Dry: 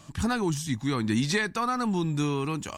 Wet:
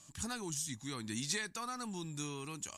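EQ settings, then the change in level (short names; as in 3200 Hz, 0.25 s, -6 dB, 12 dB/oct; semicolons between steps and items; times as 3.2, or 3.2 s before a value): LPF 12000 Hz 24 dB/oct; pre-emphasis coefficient 0.8; bell 6900 Hz +5 dB 0.22 oct; -2.0 dB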